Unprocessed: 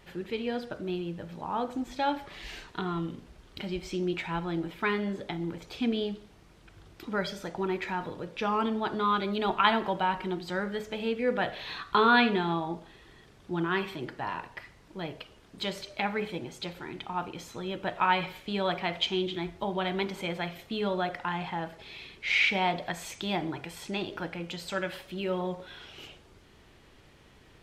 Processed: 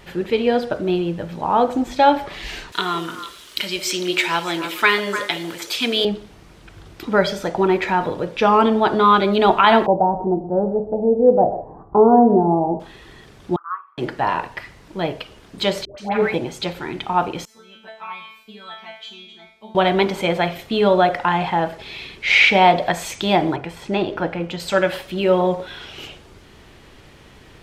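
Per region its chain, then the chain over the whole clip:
2.72–6.05 s: tilt EQ +4.5 dB/octave + band-stop 780 Hz, Q 6.6 + repeats whose band climbs or falls 150 ms, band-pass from 490 Hz, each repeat 1.4 oct, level -5 dB
9.86–12.80 s: elliptic low-pass 810 Hz, stop band 80 dB + delay 126 ms -13.5 dB
13.56–13.98 s: Butterworth band-pass 1.2 kHz, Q 5.3 + upward expansion, over -51 dBFS
15.85–16.34 s: slow attack 180 ms + phase dispersion highs, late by 130 ms, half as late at 880 Hz
17.45–19.75 s: bass shelf 150 Hz -8.5 dB + feedback comb 220 Hz, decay 0.53 s, mix 100%
23.56–24.60 s: treble shelf 3.6 kHz -11 dB + tape noise reduction on one side only decoder only
whole clip: dynamic bell 610 Hz, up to +6 dB, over -43 dBFS, Q 1; loudness maximiser +12 dB; trim -1 dB

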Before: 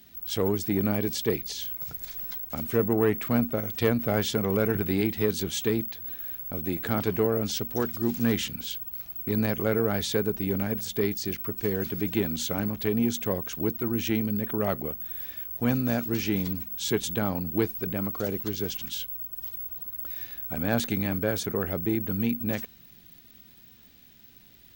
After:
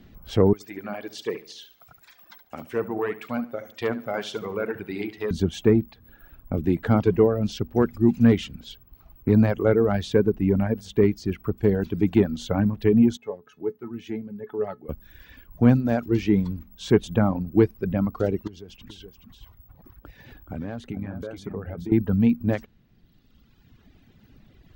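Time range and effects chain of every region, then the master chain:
0.53–5.31 s: high-pass 1.2 kHz 6 dB/octave + feedback delay 71 ms, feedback 42%, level -7 dB
13.17–14.89 s: high-pass 140 Hz + feedback comb 430 Hz, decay 0.16 s, mix 80%
18.47–21.92 s: compression 5:1, threshold -36 dBFS + delay 425 ms -6.5 dB
whole clip: low-pass 1.7 kHz 6 dB/octave; reverb removal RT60 1.9 s; tilt EQ -1.5 dB/octave; trim +6.5 dB

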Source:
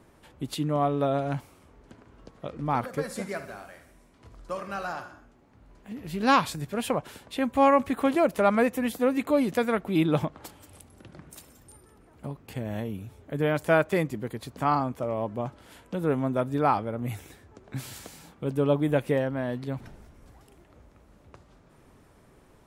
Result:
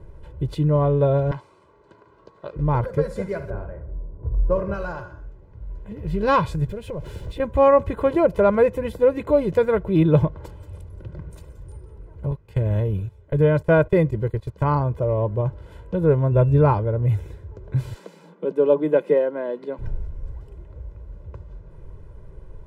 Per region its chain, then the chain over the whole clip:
1.31–2.56 s: cabinet simulation 340–9600 Hz, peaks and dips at 500 Hz -7 dB, 1.1 kHz +5 dB, 4.2 kHz +6 dB, 8.7 kHz +3 dB + loudspeaker Doppler distortion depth 0.2 ms
3.50–4.74 s: level-controlled noise filter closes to 770 Hz, open at -31 dBFS + tilt shelf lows +7 dB, about 1.5 kHz
6.69–7.40 s: jump at every zero crossing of -41 dBFS + peaking EQ 1.1 kHz -7 dB 1.7 oct + compression 3:1, threshold -36 dBFS
12.31–14.78 s: gate -40 dBFS, range -14 dB + tape noise reduction on one side only encoder only
16.31–16.72 s: bass shelf 180 Hz +7.5 dB + whistle 2.7 kHz -47 dBFS
17.94–19.79 s: steep high-pass 170 Hz 96 dB/octave + treble shelf 9.6 kHz -9.5 dB
whole clip: tilt EQ -4 dB/octave; comb 2 ms, depth 81%

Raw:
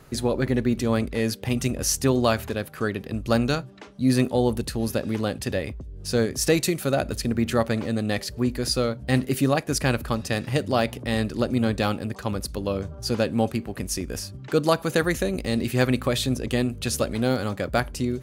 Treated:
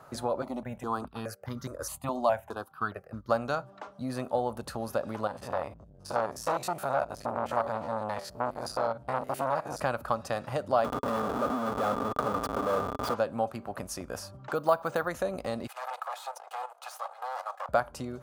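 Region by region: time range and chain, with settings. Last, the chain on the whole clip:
0.42–3.30 s: gate -31 dBFS, range -9 dB + stepped phaser 4.8 Hz 450–2600 Hz
5.27–9.80 s: spectrogram pixelated in time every 50 ms + transformer saturation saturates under 1.8 kHz
10.84–13.14 s: Schmitt trigger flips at -34.5 dBFS + small resonant body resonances 270/420/1200/3400 Hz, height 13 dB
14.55–15.08 s: treble shelf 12 kHz -4.5 dB + careless resampling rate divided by 3×, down filtered, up hold
15.67–17.69 s: comb filter that takes the minimum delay 2.4 ms + steep high-pass 620 Hz + level held to a coarse grid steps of 13 dB
whole clip: high-pass 78 Hz; compression 2.5:1, threshold -26 dBFS; high-order bell 890 Hz +14 dB; trim -8.5 dB

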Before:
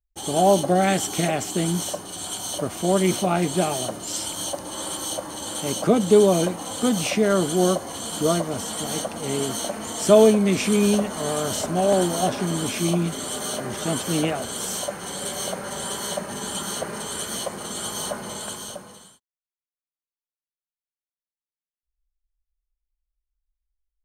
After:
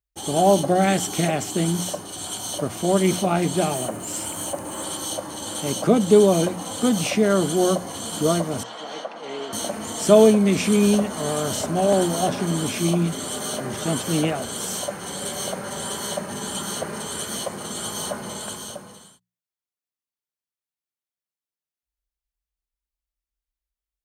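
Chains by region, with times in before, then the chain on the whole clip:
3.74–4.84 s: companding laws mixed up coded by mu + high-order bell 4.4 kHz -8.5 dB 1.1 oct
8.63–9.53 s: high-pass 520 Hz + distance through air 210 m
whole clip: high-pass 91 Hz; bass shelf 130 Hz +8 dB; hum notches 60/120/180 Hz

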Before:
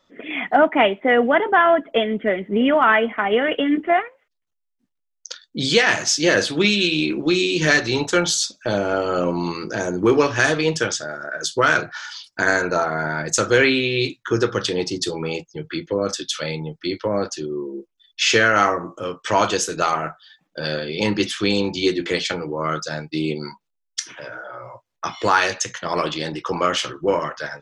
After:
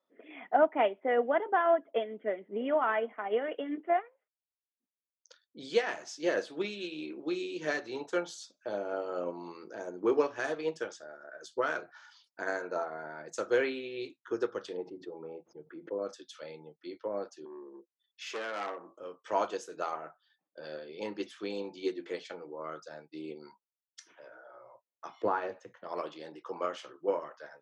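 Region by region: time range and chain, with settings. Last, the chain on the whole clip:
14.77–15.99 s: low-pass 1.1 kHz + swell ahead of each attack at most 130 dB/s
17.45–18.91 s: steep high-pass 160 Hz + transformer saturation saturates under 2.9 kHz
25.22–25.84 s: low-pass 2.4 kHz 6 dB/octave + tilt EQ -3 dB/octave
whole clip: high-pass 550 Hz 12 dB/octave; tilt shelf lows +10 dB, about 880 Hz; upward expansion 1.5:1, over -26 dBFS; trim -8.5 dB

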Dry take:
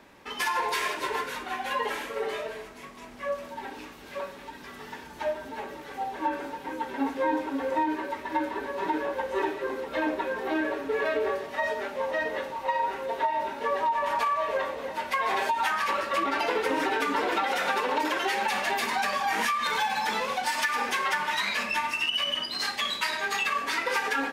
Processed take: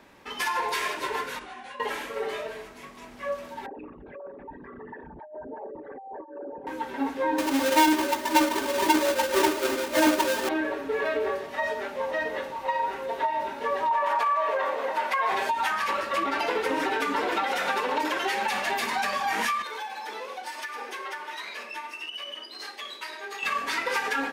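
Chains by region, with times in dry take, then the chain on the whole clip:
1.39–1.80 s: brick-wall FIR low-pass 11 kHz + compression 10:1, threshold -34 dBFS + detune thickener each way 36 cents
3.66–6.67 s: resonances exaggerated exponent 3 + compressor with a negative ratio -37 dBFS + tape spacing loss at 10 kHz 39 dB
7.38–10.49 s: square wave that keeps the level + high-pass 200 Hz 6 dB/octave + comb 3.3 ms, depth 70%
13.91–15.32 s: high-pass 270 Hz + compression 4:1, threshold -29 dBFS + peaking EQ 1 kHz +8 dB 2.7 oct
19.62–23.43 s: ladder high-pass 310 Hz, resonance 50% + band-stop 7.3 kHz, Q 14
whole clip: none

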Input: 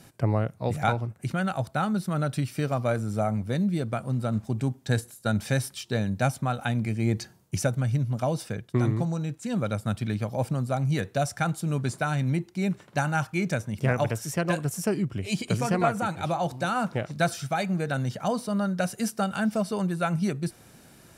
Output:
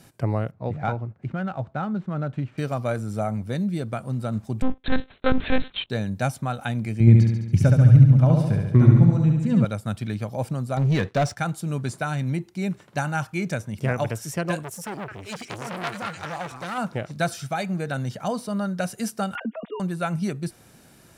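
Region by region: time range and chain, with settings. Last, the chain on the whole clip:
0.51–2.58 s: median filter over 9 samples + tape spacing loss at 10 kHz 23 dB
4.62–5.90 s: waveshaping leveller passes 3 + monotone LPC vocoder at 8 kHz 260 Hz
7.00–9.65 s: tone controls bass +12 dB, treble -11 dB + band-stop 730 Hz, Q 10 + flutter echo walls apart 12 m, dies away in 0.99 s
10.77–11.37 s: low-pass 4.7 kHz + waveshaping leveller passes 2
14.63–16.78 s: companding laws mixed up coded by A + repeats whose band climbs or falls 211 ms, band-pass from 1.6 kHz, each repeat 0.7 oct, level 0 dB + transformer saturation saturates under 3 kHz
19.35–19.80 s: formants replaced by sine waves + compression, threshold -31 dBFS + comb 4.2 ms, depth 87%
whole clip: none

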